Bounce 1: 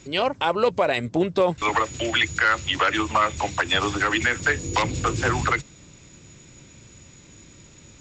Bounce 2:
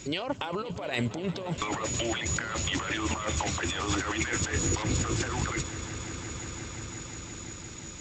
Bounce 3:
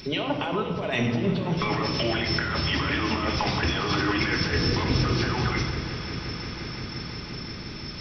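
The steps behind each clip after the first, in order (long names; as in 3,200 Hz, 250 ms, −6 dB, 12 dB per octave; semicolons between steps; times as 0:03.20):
compressor whose output falls as the input rises −29 dBFS, ratio −1; high-shelf EQ 5,700 Hz +6.5 dB; echo that builds up and dies away 175 ms, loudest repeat 5, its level −17.5 dB; level −3 dB
hearing-aid frequency compression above 3,200 Hz 1.5 to 1; reversed playback; upward compression, threshold −38 dBFS; reversed playback; rectangular room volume 1,200 cubic metres, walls mixed, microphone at 1.4 metres; level +3 dB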